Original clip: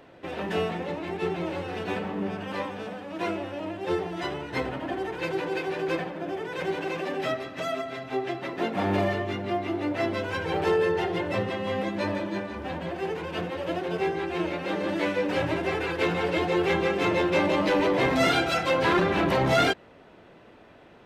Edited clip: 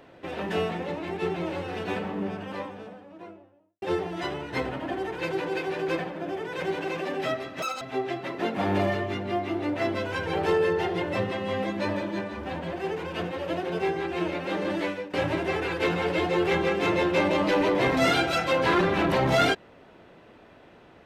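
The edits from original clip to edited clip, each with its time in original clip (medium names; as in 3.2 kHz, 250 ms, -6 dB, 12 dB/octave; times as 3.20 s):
1.97–3.82 s: studio fade out
7.62–8.00 s: speed 196%
14.94–15.32 s: fade out, to -20 dB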